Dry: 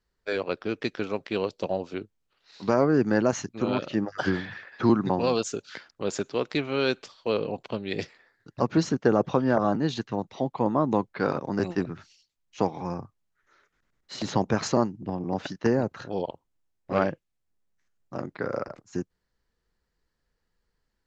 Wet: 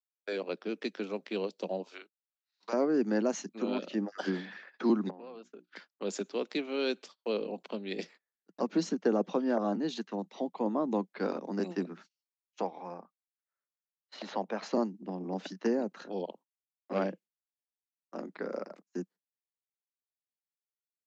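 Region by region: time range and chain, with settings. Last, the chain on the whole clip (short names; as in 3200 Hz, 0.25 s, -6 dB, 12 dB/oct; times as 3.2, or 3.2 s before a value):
1.82–2.73 HPF 920 Hz + doubler 40 ms -4.5 dB
5.1–5.76 LPF 2600 Hz + notches 60/120/180/240/300/360 Hz + compressor 4:1, threshold -41 dBFS
12.61–14.73 BPF 150–3400 Hz + resonant low shelf 460 Hz -6 dB, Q 1.5
whole clip: gate -46 dBFS, range -29 dB; steep high-pass 180 Hz 72 dB/oct; dynamic EQ 1300 Hz, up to -6 dB, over -41 dBFS, Q 1; gain -5 dB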